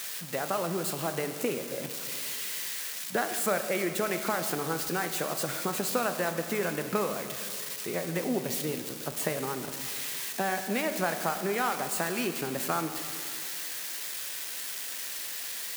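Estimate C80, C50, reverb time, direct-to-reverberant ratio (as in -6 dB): 9.0 dB, 8.0 dB, 2.4 s, 6.5 dB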